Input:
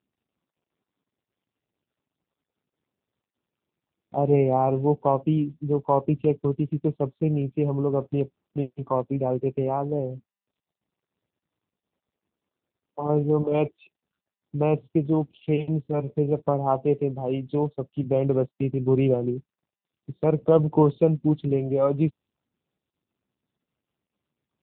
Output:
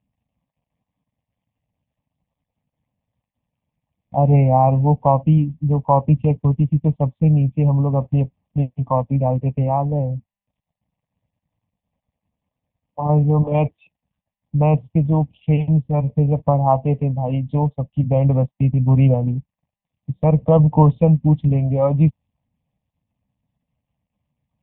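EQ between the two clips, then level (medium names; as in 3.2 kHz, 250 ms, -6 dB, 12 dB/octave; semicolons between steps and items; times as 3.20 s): dynamic bell 1.4 kHz, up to +5 dB, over -40 dBFS, Q 1.1; tilt EQ -3 dB/octave; static phaser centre 1.4 kHz, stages 6; +5.0 dB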